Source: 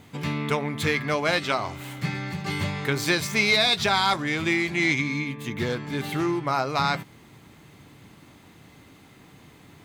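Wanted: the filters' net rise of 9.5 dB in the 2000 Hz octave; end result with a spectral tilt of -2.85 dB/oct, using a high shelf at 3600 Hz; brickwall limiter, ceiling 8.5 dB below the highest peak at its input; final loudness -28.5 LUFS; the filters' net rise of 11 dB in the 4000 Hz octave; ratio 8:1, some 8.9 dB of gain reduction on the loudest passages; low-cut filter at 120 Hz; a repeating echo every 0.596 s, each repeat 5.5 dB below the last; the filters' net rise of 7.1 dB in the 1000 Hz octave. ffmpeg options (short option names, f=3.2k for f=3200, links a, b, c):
-af "highpass=120,equalizer=f=1k:t=o:g=6.5,equalizer=f=2k:t=o:g=6,highshelf=f=3.6k:g=5,equalizer=f=4k:t=o:g=7.5,acompressor=threshold=-16dB:ratio=8,alimiter=limit=-11.5dB:level=0:latency=1,aecho=1:1:596|1192|1788|2384|2980|3576|4172:0.531|0.281|0.149|0.079|0.0419|0.0222|0.0118,volume=-7dB"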